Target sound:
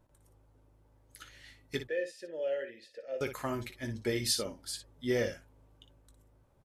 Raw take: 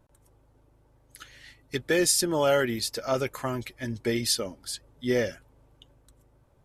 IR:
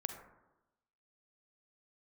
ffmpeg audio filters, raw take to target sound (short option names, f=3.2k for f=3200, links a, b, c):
-filter_complex "[0:a]asettb=1/sr,asplit=3[a][b][c];[a]atrim=end=1.874[d];[b]atrim=start=1.87:end=3.21,asetpts=PTS-STARTPTS,afade=t=in:d=0.004:c=qsin,afade=t=out:st=1.336:d=0.004:c=qsin,asplit=3[e][f][g];[e]bandpass=f=530:t=q:w=8,volume=0dB[h];[f]bandpass=f=1.84k:t=q:w=8,volume=-6dB[i];[g]bandpass=f=2.48k:t=q:w=8,volume=-9dB[j];[h][i][j]amix=inputs=3:normalize=0[k];[c]atrim=start=3.206[l];[d][k]acrossfade=d=0.004:c1=hsin:c2=qsin[m];[m][l]acrossfade=d=0.004:c1=qsin:c2=hsin,aecho=1:1:19|58:0.266|0.316,volume=-5dB"